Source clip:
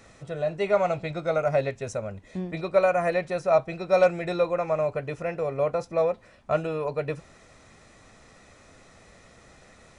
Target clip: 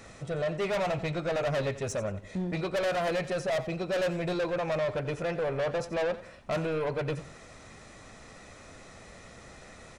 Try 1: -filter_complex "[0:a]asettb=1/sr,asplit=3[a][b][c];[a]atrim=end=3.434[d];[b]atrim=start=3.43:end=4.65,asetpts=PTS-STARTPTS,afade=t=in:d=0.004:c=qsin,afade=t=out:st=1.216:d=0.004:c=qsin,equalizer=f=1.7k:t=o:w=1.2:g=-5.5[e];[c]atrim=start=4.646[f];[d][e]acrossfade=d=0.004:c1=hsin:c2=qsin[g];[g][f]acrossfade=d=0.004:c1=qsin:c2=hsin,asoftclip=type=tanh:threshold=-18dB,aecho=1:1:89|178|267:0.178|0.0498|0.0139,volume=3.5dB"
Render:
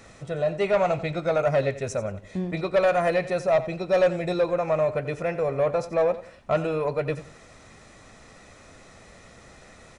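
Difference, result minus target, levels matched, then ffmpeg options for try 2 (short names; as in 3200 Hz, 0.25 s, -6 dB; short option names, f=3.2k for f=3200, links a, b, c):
soft clip: distortion -9 dB
-filter_complex "[0:a]asettb=1/sr,asplit=3[a][b][c];[a]atrim=end=3.434[d];[b]atrim=start=3.43:end=4.65,asetpts=PTS-STARTPTS,afade=t=in:d=0.004:c=qsin,afade=t=out:st=1.216:d=0.004:c=qsin,equalizer=f=1.7k:t=o:w=1.2:g=-5.5[e];[c]atrim=start=4.646[f];[d][e]acrossfade=d=0.004:c1=hsin:c2=qsin[g];[g][f]acrossfade=d=0.004:c1=qsin:c2=hsin,asoftclip=type=tanh:threshold=-30dB,aecho=1:1:89|178|267:0.178|0.0498|0.0139,volume=3.5dB"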